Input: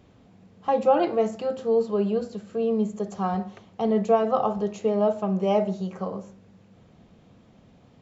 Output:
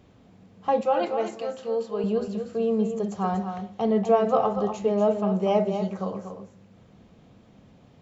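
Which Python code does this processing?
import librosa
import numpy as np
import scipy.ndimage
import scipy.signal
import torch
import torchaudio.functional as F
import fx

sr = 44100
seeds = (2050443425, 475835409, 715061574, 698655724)

y = fx.low_shelf(x, sr, hz=500.0, db=-10.0, at=(0.81, 2.04))
y = fx.echo_multitap(y, sr, ms=(239, 254), db=(-8.5, -18.5))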